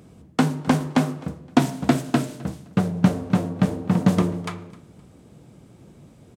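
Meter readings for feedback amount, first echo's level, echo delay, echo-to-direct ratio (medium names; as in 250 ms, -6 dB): 30%, -22.0 dB, 259 ms, -21.5 dB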